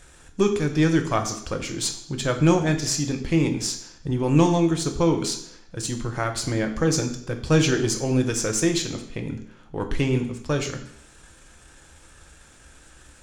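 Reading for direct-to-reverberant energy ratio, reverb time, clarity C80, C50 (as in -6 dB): 5.0 dB, 0.70 s, 12.5 dB, 10.0 dB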